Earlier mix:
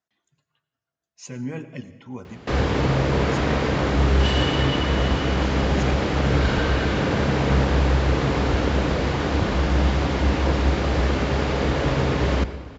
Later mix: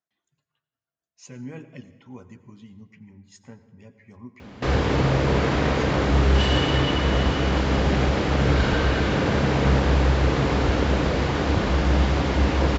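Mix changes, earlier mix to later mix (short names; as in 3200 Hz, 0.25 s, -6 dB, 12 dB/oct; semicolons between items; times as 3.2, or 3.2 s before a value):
speech -6.0 dB; background: entry +2.15 s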